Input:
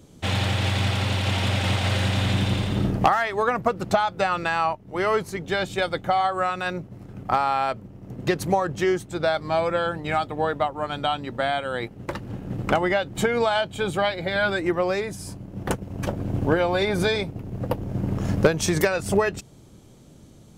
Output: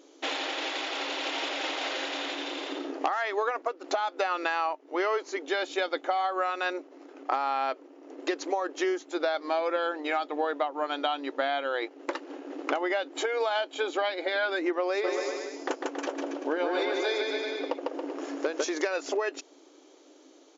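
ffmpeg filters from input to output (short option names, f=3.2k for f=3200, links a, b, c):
-filter_complex "[0:a]asplit=3[a][b][c];[a]afade=t=out:st=15.03:d=0.02[d];[b]aecho=1:1:150|277.5|385.9|478|556.3:0.631|0.398|0.251|0.158|0.1,afade=t=in:st=15.03:d=0.02,afade=t=out:st=18.63:d=0.02[e];[c]afade=t=in:st=18.63:d=0.02[f];[d][e][f]amix=inputs=3:normalize=0,asplit=2[g][h];[g]atrim=end=3.84,asetpts=PTS-STARTPTS,afade=t=out:st=3.22:d=0.62:c=qsin:silence=0.211349[i];[h]atrim=start=3.84,asetpts=PTS-STARTPTS,afade=t=in:d=0.004:c=hsin:silence=0.211349[j];[i][j]concat=n=2:v=0:a=1,acompressor=threshold=-24dB:ratio=6,afftfilt=real='re*between(b*sr/4096,260,7300)':imag='im*between(b*sr/4096,260,7300)':win_size=4096:overlap=0.75"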